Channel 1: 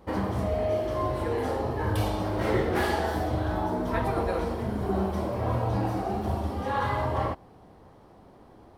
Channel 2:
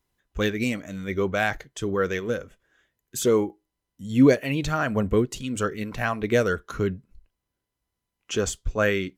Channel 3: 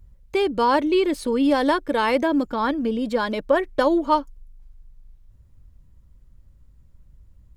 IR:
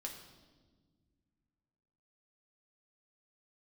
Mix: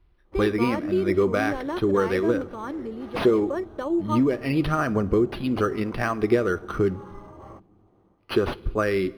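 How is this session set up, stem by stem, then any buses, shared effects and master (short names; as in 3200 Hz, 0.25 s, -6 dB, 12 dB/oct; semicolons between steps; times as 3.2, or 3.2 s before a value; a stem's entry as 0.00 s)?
-12.0 dB, 0.25 s, no send, notch 1700 Hz; auto duck -8 dB, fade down 0.25 s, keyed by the second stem
+1.5 dB, 0.00 s, muted 7.67–8.18, send -9.5 dB, compressor 10:1, threshold -23 dBFS, peak gain reduction 12.5 dB
-12.5 dB, 0.00 s, no send, dry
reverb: on, pre-delay 5 ms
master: small resonant body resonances 350/1200 Hz, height 10 dB, ringing for 45 ms; decimation joined by straight lines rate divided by 6×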